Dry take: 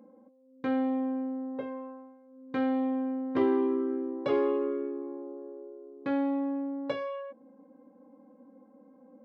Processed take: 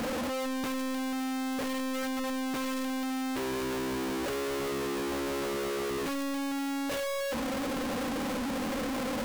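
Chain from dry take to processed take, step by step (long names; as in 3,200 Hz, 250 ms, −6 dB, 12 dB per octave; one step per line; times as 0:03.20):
sign of each sample alone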